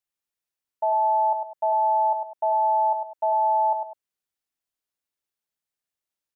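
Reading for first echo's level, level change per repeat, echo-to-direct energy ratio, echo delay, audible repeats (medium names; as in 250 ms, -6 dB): -6.0 dB, -10.5 dB, -5.5 dB, 101 ms, 2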